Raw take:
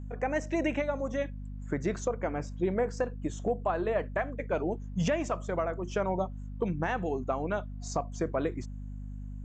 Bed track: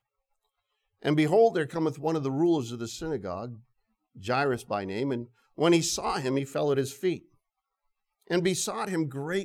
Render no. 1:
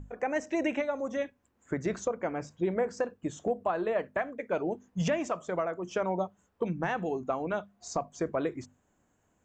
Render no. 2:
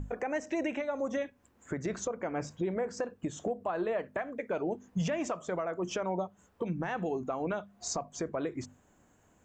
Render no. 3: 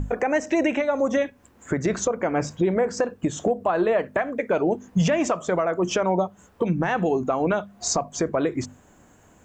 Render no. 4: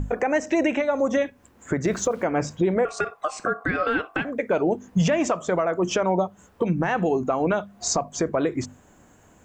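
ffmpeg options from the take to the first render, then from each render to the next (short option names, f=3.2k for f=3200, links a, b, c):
-af "bandreject=f=50:t=h:w=6,bandreject=f=100:t=h:w=6,bandreject=f=150:t=h:w=6,bandreject=f=200:t=h:w=6,bandreject=f=250:t=h:w=6"
-filter_complex "[0:a]asplit=2[a][b];[b]acompressor=threshold=-36dB:ratio=16,volume=1dB[c];[a][c]amix=inputs=2:normalize=0,alimiter=limit=-24dB:level=0:latency=1:release=237"
-af "volume=11dB"
-filter_complex "[0:a]asettb=1/sr,asplit=3[a][b][c];[a]atrim=end=1.854[d];[b]atrim=start=1.85:end=2.25,asetpts=PTS-STARTPTS,afade=t=in:d=0.004:c=qsin,afade=t=out:st=0.396:d=0.004:c=qsin,aeval=exprs='val(0)*gte(abs(val(0)),0.00501)':c=same[e];[c]atrim=start=2.246[f];[d][e]acrossfade=d=0.004:c1=hsin:c2=qsin[g];[g][f]acrossfade=d=0.004:c1=qsin:c2=hsin,asettb=1/sr,asplit=3[h][i][j];[h]atrim=end=2.854[k];[i]atrim=start=2.85:end=4.25,asetpts=PTS-STARTPTS,afade=t=in:d=0.004:c=qsin,afade=t=out:st=1.396:d=0.004:c=qsin,aeval=exprs='val(0)*sin(2*PI*920*n/s)':c=same[l];[j]atrim=start=4.246[m];[k][l]acrossfade=d=0.004:c1=hsin:c2=qsin[n];[n][m]acrossfade=d=0.004:c1=qsin:c2=hsin,asettb=1/sr,asplit=3[o][p][q];[o]atrim=end=6.644[r];[p]atrim=start=6.64:end=7.52,asetpts=PTS-STARTPTS,afade=t=in:d=0.004:c=qsin,afade=t=out:st=0.876:d=0.004:c=qsin,bandreject=f=3.5k:w=12[s];[q]atrim=start=7.516[t];[r][s]acrossfade=d=0.004:c1=hsin:c2=qsin[u];[u][t]acrossfade=d=0.004:c1=qsin:c2=hsin"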